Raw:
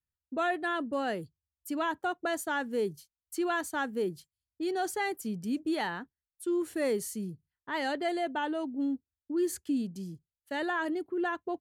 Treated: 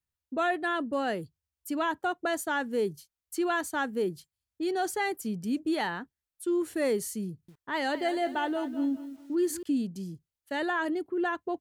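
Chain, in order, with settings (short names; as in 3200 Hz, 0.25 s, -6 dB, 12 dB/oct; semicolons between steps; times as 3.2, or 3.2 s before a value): 7.28–9.63 lo-fi delay 0.202 s, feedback 35%, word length 9-bit, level -12.5 dB; gain +2 dB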